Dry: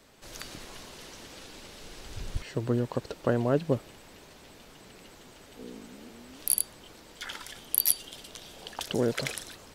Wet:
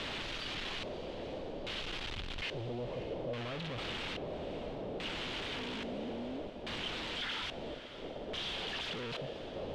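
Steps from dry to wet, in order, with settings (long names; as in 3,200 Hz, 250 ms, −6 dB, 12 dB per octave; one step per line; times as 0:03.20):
sign of each sample alone
auto-filter low-pass square 0.6 Hz 590–3,200 Hz
feedback delay with all-pass diffusion 571 ms, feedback 48%, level −13 dB
level −7 dB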